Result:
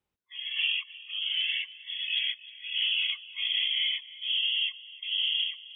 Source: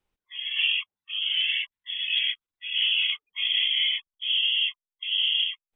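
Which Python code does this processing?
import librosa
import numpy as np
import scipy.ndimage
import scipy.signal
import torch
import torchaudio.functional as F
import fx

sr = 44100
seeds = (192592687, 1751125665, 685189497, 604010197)

p1 = scipy.signal.sosfilt(scipy.signal.butter(2, 87.0, 'highpass', fs=sr, output='sos'), x)
p2 = fx.low_shelf(p1, sr, hz=150.0, db=7.5)
p3 = p2 + fx.echo_single(p2, sr, ms=310, db=-18.5, dry=0)
y = F.gain(torch.from_numpy(p3), -4.0).numpy()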